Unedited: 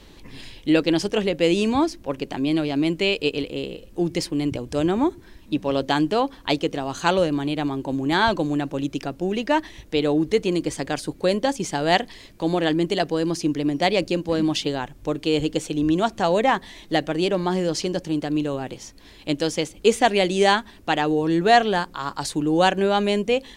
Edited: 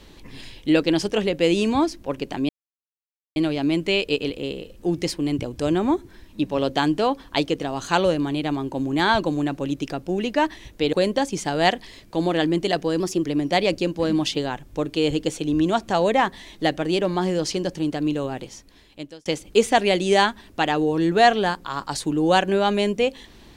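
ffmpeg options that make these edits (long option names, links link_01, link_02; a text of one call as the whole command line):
ffmpeg -i in.wav -filter_complex "[0:a]asplit=6[link_01][link_02][link_03][link_04][link_05][link_06];[link_01]atrim=end=2.49,asetpts=PTS-STARTPTS,afade=type=out:start_time=2.486:duration=0.004:curve=hsin,apad=pad_dur=0.87[link_07];[link_02]atrim=start=2.49:end=10.062,asetpts=PTS-STARTPTS,afade=type=in:duration=0.004:curve=hsin[link_08];[link_03]atrim=start=11.198:end=13.274[link_09];[link_04]atrim=start=13.27:end=13.54,asetpts=PTS-STARTPTS,asetrate=48510,aresample=44100[link_10];[link_05]atrim=start=13.536:end=19.55,asetpts=PTS-STARTPTS,afade=type=out:start_time=5.134:duration=0.88[link_11];[link_06]atrim=start=19.55,asetpts=PTS-STARTPTS,afade=type=in:duration=0.004:curve=hsin[link_12];[link_07][link_08]concat=n=2:v=0:a=1[link_13];[link_13][link_09]acrossfade=duration=0.004:curve1=hsin:curve2=hsin[link_14];[link_14][link_10]acrossfade=duration=0.004:curve1=hsin:curve2=hsin[link_15];[link_11][link_12]concat=n=2:v=0:a=1[link_16];[link_15][link_16]acrossfade=duration=0.004:curve1=hsin:curve2=hsin" out.wav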